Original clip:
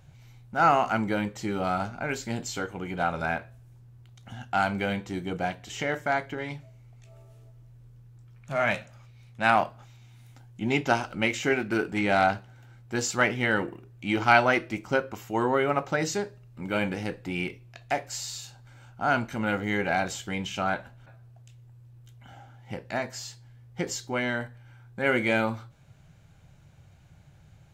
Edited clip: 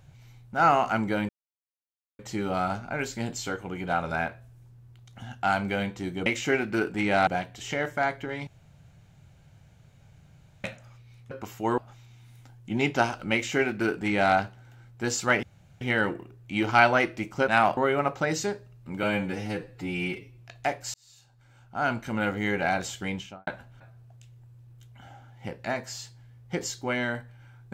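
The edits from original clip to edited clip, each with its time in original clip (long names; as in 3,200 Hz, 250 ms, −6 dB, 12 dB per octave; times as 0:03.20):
0:01.29: splice in silence 0.90 s
0:06.56–0:08.73: fill with room tone
0:09.40–0:09.69: swap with 0:15.01–0:15.48
0:11.24–0:12.25: duplicate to 0:05.36
0:13.34: splice in room tone 0.38 s
0:16.74–0:17.64: time-stretch 1.5×
0:18.20–0:19.40: fade in
0:20.35–0:20.73: fade out and dull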